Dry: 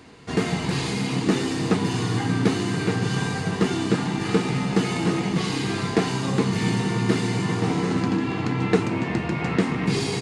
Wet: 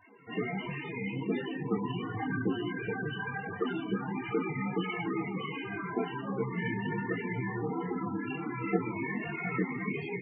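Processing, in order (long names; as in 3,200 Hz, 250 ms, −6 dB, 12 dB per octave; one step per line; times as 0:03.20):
low-pass filter 3,000 Hz 24 dB per octave
spectral tilt +3 dB per octave
flanger 1.4 Hz, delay 1 ms, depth 9.5 ms, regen +5%
spectral peaks only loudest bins 16
micro pitch shift up and down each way 15 cents
level +3 dB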